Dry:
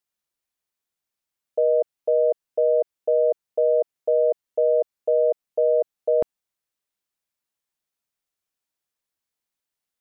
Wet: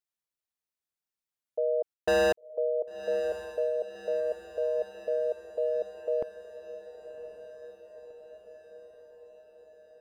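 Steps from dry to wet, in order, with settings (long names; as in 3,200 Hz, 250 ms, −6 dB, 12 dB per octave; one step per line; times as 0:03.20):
0:01.94–0:02.45: leveller curve on the samples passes 5
feedback delay with all-pass diffusion 1,082 ms, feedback 63%, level −12 dB
level −8.5 dB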